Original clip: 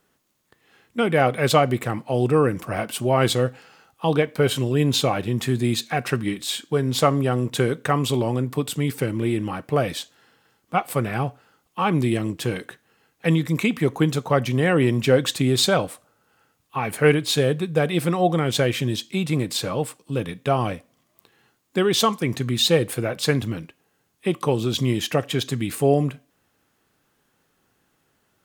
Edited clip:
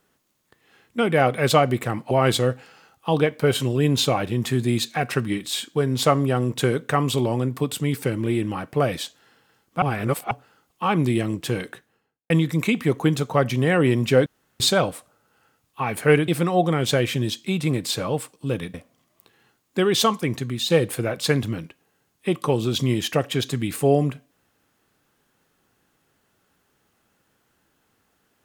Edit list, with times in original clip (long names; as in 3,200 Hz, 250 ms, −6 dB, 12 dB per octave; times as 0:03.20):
0:02.11–0:03.07: remove
0:10.78–0:11.27: reverse
0:12.65–0:13.26: fade out and dull
0:15.22–0:15.56: fill with room tone
0:17.24–0:17.94: remove
0:20.40–0:20.73: remove
0:22.19–0:22.69: fade out, to −7.5 dB